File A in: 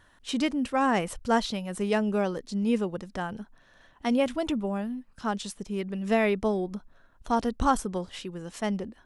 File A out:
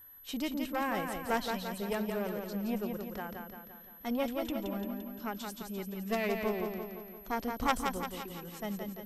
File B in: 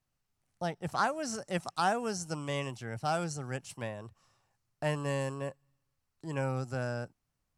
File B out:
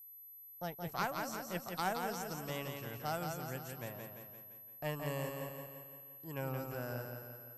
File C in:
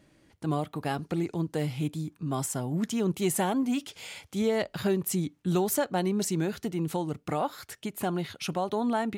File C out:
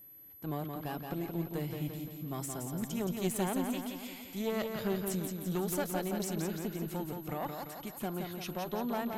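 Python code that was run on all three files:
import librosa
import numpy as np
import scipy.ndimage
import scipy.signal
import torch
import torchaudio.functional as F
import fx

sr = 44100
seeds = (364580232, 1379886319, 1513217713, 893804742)

y = fx.cheby_harmonics(x, sr, harmonics=(2, 3, 5, 7), levels_db=(-11, -10, -18, -32), full_scale_db=-11.5)
y = fx.echo_feedback(y, sr, ms=172, feedback_pct=55, wet_db=-5.0)
y = y + 10.0 ** (-49.0 / 20.0) * np.sin(2.0 * np.pi * 12000.0 * np.arange(len(y)) / sr)
y = y * 10.0 ** (-2.5 / 20.0)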